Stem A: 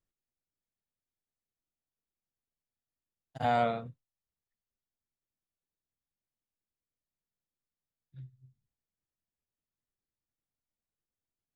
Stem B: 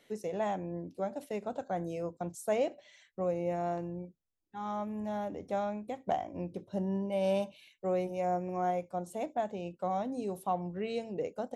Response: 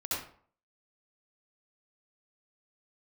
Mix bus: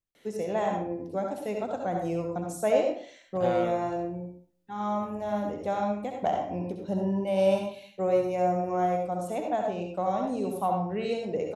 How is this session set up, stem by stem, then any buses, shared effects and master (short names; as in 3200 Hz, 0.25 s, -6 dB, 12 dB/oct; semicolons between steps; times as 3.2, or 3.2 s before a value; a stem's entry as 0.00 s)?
-4.0 dB, 0.00 s, no send, dry
+1.0 dB, 0.15 s, send -3.5 dB, dry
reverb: on, RT60 0.50 s, pre-delay 61 ms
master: dry